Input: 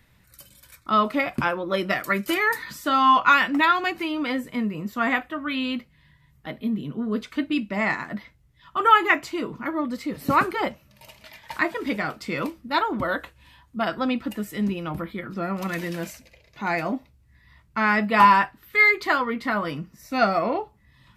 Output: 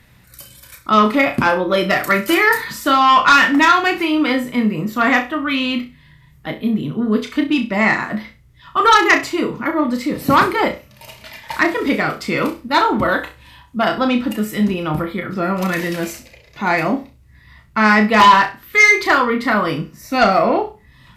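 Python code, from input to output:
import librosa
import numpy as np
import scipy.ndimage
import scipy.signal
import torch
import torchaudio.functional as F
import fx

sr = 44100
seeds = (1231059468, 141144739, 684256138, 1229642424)

y = fx.cheby_harmonics(x, sr, harmonics=(5,), levels_db=(-8,), full_scale_db=-3.0)
y = fx.room_flutter(y, sr, wall_m=5.6, rt60_s=0.28)
y = y * 10.0 ** (-1.0 / 20.0)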